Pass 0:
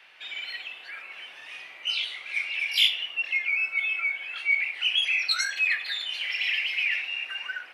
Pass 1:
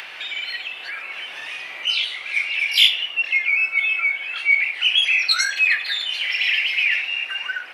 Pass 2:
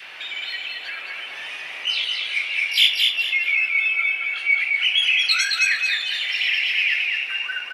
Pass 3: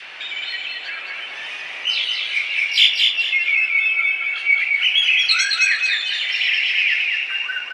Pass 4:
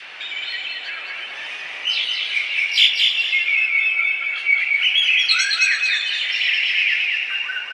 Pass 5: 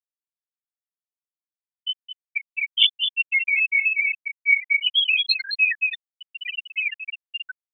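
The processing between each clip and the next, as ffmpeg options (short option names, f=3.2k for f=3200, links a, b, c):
-af "acompressor=mode=upward:threshold=-33dB:ratio=2.5,volume=7dB"
-af "adynamicequalizer=threshold=0.0141:dfrequency=800:dqfactor=1:tfrequency=800:tqfactor=1:attack=5:release=100:ratio=0.375:range=2:mode=cutabove:tftype=bell,aecho=1:1:218|436|654|872:0.668|0.221|0.0728|0.024,volume=-2dB"
-af "lowpass=f=8.5k:w=0.5412,lowpass=f=8.5k:w=1.3066,volume=2.5dB"
-af "flanger=delay=2.9:depth=4.2:regen=80:speed=1.4:shape=triangular,aecho=1:1:329:0.2,volume=4dB"
-af "afftfilt=real='re*gte(hypot(re,im),0.794)':imag='im*gte(hypot(re,im),0.794)':win_size=1024:overlap=0.75"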